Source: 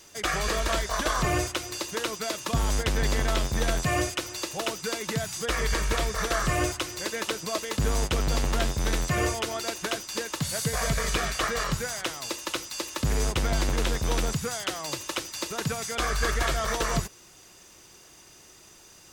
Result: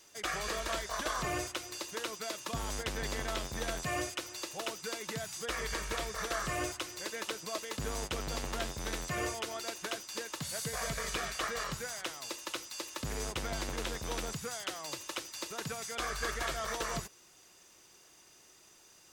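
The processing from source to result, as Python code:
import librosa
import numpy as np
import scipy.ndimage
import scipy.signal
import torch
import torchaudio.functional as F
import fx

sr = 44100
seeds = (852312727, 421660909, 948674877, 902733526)

y = fx.low_shelf(x, sr, hz=190.0, db=-8.0)
y = y * librosa.db_to_amplitude(-7.5)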